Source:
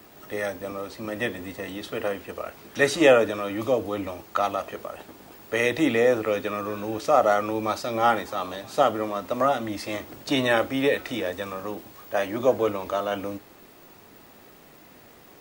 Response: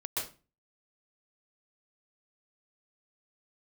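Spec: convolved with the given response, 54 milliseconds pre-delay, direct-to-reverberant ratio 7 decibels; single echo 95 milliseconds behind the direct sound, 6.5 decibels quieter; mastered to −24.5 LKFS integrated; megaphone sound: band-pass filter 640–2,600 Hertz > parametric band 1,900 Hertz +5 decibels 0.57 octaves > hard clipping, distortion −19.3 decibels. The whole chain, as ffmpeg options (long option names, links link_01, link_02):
-filter_complex "[0:a]aecho=1:1:95:0.473,asplit=2[link_01][link_02];[1:a]atrim=start_sample=2205,adelay=54[link_03];[link_02][link_03]afir=irnorm=-1:irlink=0,volume=-11dB[link_04];[link_01][link_04]amix=inputs=2:normalize=0,highpass=640,lowpass=2600,equalizer=frequency=1900:width_type=o:width=0.57:gain=5,asoftclip=type=hard:threshold=-13.5dB,volume=2dB"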